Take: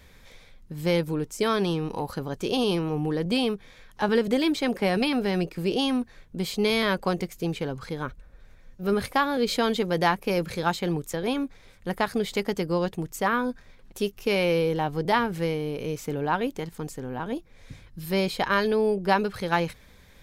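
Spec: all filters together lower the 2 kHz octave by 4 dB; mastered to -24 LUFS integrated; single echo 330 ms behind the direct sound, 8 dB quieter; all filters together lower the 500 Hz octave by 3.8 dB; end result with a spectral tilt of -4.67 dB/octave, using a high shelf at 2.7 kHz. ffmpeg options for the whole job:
-af "equalizer=f=500:t=o:g=-4.5,equalizer=f=2000:t=o:g=-7.5,highshelf=f=2700:g=6,aecho=1:1:330:0.398,volume=1.58"

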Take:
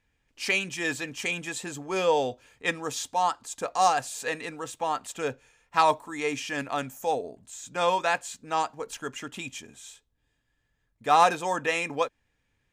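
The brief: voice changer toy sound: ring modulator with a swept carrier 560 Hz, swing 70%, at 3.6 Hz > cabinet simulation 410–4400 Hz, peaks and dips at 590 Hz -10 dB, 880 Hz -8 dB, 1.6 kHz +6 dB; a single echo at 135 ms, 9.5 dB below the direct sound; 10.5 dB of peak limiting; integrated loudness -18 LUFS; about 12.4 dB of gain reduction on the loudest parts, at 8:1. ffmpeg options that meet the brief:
-af "acompressor=threshold=0.0398:ratio=8,alimiter=level_in=1.33:limit=0.0631:level=0:latency=1,volume=0.75,aecho=1:1:135:0.335,aeval=exprs='val(0)*sin(2*PI*560*n/s+560*0.7/3.6*sin(2*PI*3.6*n/s))':c=same,highpass=410,equalizer=f=590:t=q:w=4:g=-10,equalizer=f=880:t=q:w=4:g=-8,equalizer=f=1600:t=q:w=4:g=6,lowpass=f=4400:w=0.5412,lowpass=f=4400:w=1.3066,volume=13.3"

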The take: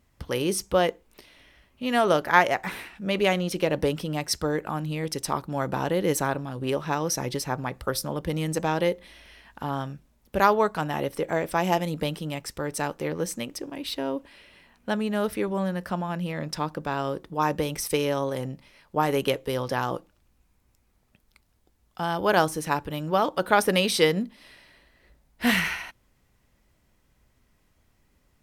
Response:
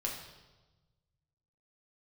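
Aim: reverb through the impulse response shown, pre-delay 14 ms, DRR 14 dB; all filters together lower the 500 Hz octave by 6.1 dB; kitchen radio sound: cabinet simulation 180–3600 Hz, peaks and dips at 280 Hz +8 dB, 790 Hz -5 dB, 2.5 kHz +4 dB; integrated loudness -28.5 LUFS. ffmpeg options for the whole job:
-filter_complex "[0:a]equalizer=f=500:t=o:g=-7.5,asplit=2[s0][s1];[1:a]atrim=start_sample=2205,adelay=14[s2];[s1][s2]afir=irnorm=-1:irlink=0,volume=0.15[s3];[s0][s3]amix=inputs=2:normalize=0,highpass=180,equalizer=f=280:t=q:w=4:g=8,equalizer=f=790:t=q:w=4:g=-5,equalizer=f=2500:t=q:w=4:g=4,lowpass=f=3600:w=0.5412,lowpass=f=3600:w=1.3066,volume=1.06"

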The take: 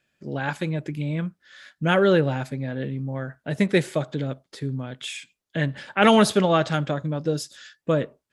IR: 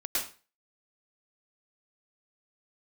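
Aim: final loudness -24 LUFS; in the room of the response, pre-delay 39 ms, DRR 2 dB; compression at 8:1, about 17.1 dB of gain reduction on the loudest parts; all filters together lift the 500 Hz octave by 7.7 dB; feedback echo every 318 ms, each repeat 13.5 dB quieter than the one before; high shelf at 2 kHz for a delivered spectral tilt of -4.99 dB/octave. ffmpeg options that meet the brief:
-filter_complex "[0:a]equalizer=f=500:t=o:g=9,highshelf=f=2000:g=7.5,acompressor=threshold=0.0501:ratio=8,aecho=1:1:318|636:0.211|0.0444,asplit=2[s0][s1];[1:a]atrim=start_sample=2205,adelay=39[s2];[s1][s2]afir=irnorm=-1:irlink=0,volume=0.376[s3];[s0][s3]amix=inputs=2:normalize=0,volume=1.88"

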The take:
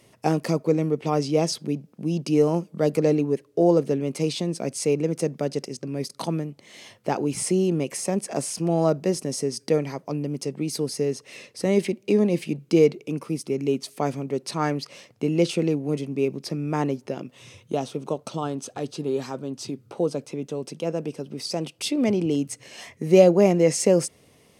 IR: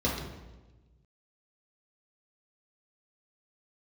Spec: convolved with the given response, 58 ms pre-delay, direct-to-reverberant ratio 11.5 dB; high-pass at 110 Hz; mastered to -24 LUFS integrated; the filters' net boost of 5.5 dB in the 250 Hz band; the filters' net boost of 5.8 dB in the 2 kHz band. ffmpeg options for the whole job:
-filter_complex "[0:a]highpass=110,equalizer=f=250:t=o:g=8,equalizer=f=2000:t=o:g=7,asplit=2[s0][s1];[1:a]atrim=start_sample=2205,adelay=58[s2];[s1][s2]afir=irnorm=-1:irlink=0,volume=0.0794[s3];[s0][s3]amix=inputs=2:normalize=0,volume=0.631"

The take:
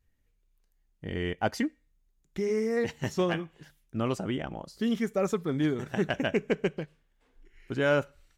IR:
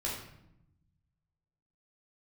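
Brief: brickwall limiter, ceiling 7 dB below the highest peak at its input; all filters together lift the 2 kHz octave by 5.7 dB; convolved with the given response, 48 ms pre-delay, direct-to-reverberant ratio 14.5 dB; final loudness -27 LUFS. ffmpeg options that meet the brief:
-filter_complex "[0:a]equalizer=f=2000:t=o:g=7.5,alimiter=limit=0.133:level=0:latency=1,asplit=2[s0][s1];[1:a]atrim=start_sample=2205,adelay=48[s2];[s1][s2]afir=irnorm=-1:irlink=0,volume=0.119[s3];[s0][s3]amix=inputs=2:normalize=0,volume=1.5"

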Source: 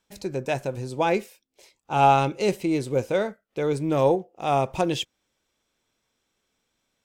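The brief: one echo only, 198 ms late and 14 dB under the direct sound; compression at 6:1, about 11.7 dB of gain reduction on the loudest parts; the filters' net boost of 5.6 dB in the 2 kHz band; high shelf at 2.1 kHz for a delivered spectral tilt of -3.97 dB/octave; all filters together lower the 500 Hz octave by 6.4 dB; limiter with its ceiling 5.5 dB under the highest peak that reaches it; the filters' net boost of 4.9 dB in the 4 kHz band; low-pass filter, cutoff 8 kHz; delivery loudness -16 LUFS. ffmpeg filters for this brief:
-af "lowpass=8000,equalizer=f=500:t=o:g=-8.5,equalizer=f=2000:t=o:g=8.5,highshelf=f=2100:g=-4,equalizer=f=4000:t=o:g=7,acompressor=threshold=0.0447:ratio=6,alimiter=limit=0.075:level=0:latency=1,aecho=1:1:198:0.2,volume=7.94"

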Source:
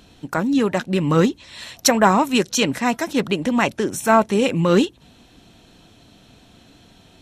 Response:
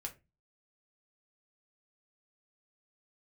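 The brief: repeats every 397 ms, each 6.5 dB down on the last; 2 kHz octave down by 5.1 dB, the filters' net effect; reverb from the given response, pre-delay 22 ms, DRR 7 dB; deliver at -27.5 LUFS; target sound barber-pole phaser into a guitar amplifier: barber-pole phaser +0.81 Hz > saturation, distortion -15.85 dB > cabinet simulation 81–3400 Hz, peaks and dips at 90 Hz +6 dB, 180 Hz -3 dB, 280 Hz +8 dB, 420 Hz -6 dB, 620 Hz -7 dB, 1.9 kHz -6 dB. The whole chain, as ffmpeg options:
-filter_complex "[0:a]equalizer=f=2000:t=o:g=-4,aecho=1:1:397|794|1191|1588|1985|2382:0.473|0.222|0.105|0.0491|0.0231|0.0109,asplit=2[s0][s1];[1:a]atrim=start_sample=2205,adelay=22[s2];[s1][s2]afir=irnorm=-1:irlink=0,volume=0.596[s3];[s0][s3]amix=inputs=2:normalize=0,asplit=2[s4][s5];[s5]afreqshift=0.81[s6];[s4][s6]amix=inputs=2:normalize=1,asoftclip=threshold=0.251,highpass=81,equalizer=f=90:t=q:w=4:g=6,equalizer=f=180:t=q:w=4:g=-3,equalizer=f=280:t=q:w=4:g=8,equalizer=f=420:t=q:w=4:g=-6,equalizer=f=620:t=q:w=4:g=-7,equalizer=f=1900:t=q:w=4:g=-6,lowpass=f=3400:w=0.5412,lowpass=f=3400:w=1.3066,volume=0.531"

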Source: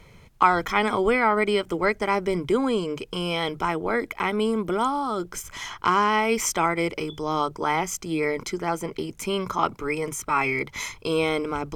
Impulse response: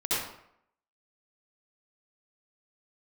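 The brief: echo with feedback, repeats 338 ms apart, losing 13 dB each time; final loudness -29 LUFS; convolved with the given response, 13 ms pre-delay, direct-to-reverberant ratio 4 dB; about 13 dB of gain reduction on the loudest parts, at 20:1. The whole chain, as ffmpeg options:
-filter_complex "[0:a]acompressor=threshold=0.0562:ratio=20,aecho=1:1:338|676|1014:0.224|0.0493|0.0108,asplit=2[s0][s1];[1:a]atrim=start_sample=2205,adelay=13[s2];[s1][s2]afir=irnorm=-1:irlink=0,volume=0.211[s3];[s0][s3]amix=inputs=2:normalize=0,volume=0.944"

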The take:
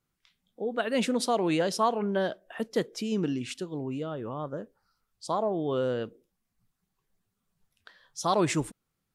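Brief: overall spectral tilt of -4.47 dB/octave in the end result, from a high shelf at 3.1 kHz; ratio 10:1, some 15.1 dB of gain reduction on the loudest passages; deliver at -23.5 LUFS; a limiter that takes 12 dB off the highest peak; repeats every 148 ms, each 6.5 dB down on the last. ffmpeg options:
-af "highshelf=f=3100:g=4.5,acompressor=threshold=0.0158:ratio=10,alimiter=level_in=4.47:limit=0.0631:level=0:latency=1,volume=0.224,aecho=1:1:148|296|444|592|740|888:0.473|0.222|0.105|0.0491|0.0231|0.0109,volume=11.9"

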